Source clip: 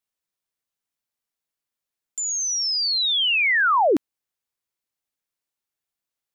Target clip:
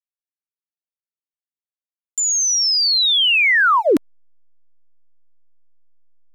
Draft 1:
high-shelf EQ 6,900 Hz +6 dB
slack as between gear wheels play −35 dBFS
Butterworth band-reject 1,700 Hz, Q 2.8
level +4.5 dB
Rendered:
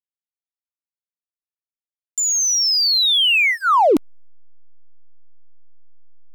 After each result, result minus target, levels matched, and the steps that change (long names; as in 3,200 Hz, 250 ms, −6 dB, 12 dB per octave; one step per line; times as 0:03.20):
slack as between gear wheels: distortion +12 dB; 2,000 Hz band −3.0 dB
change: slack as between gear wheels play −46.5 dBFS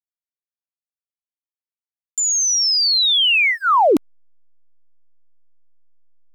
2,000 Hz band −3.0 dB
change: Butterworth band-reject 770 Hz, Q 2.8